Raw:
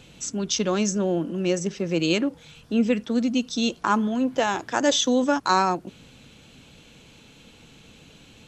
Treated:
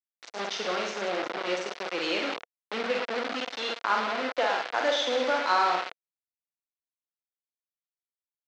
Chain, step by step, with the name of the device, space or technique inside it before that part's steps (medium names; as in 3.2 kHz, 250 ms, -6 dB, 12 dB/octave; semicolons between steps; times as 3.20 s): 1.54–2.11 s: tone controls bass -3 dB, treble +6 dB; 3.15–4.25 s: high-pass 120 Hz 6 dB/octave; reverse bouncing-ball echo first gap 50 ms, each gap 1.2×, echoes 5; hand-held game console (bit crusher 4-bit; cabinet simulation 480–4600 Hz, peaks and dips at 490 Hz +4 dB, 690 Hz +4 dB, 1.4 kHz +4 dB, 2.1 kHz +3 dB); trim -6.5 dB